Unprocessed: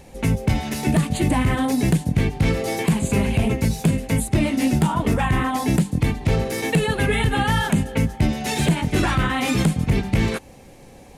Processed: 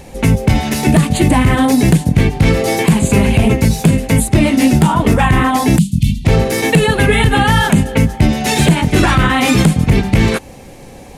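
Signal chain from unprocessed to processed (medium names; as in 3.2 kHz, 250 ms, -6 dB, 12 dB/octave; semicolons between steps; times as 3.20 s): 5.78–6.25 s: elliptic band-stop 210–3000 Hz, stop band 40 dB; loudness maximiser +10.5 dB; trim -1 dB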